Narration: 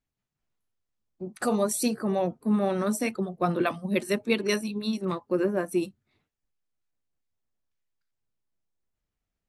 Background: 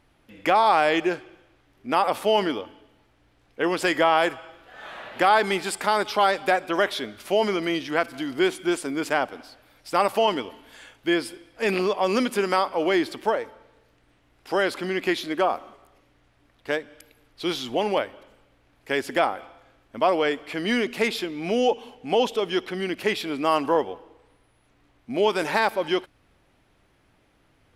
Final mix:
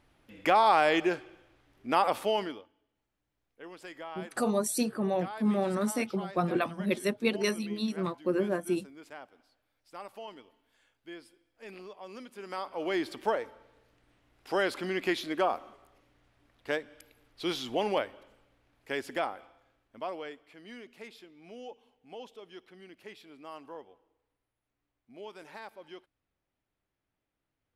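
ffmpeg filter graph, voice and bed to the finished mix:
-filter_complex "[0:a]adelay=2950,volume=-3dB[a];[1:a]volume=13.5dB,afade=t=out:st=2.07:d=0.61:silence=0.112202,afade=t=in:st=12.36:d=0.94:silence=0.133352,afade=t=out:st=18.03:d=2.52:silence=0.125893[b];[a][b]amix=inputs=2:normalize=0"

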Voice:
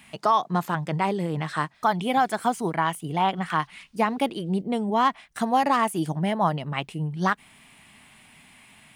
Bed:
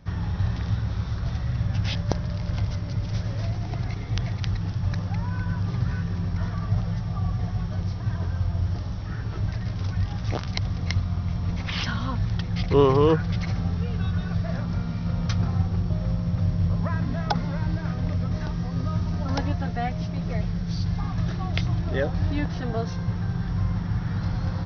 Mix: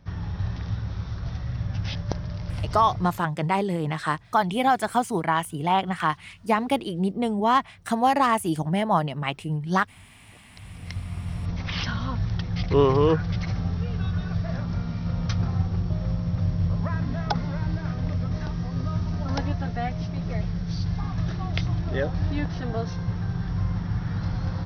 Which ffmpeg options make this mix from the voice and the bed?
-filter_complex "[0:a]adelay=2500,volume=1dB[a];[1:a]volume=22.5dB,afade=t=out:st=2.88:d=0.34:silence=0.0668344,afade=t=in:st=10.51:d=1.15:silence=0.0501187[b];[a][b]amix=inputs=2:normalize=0"

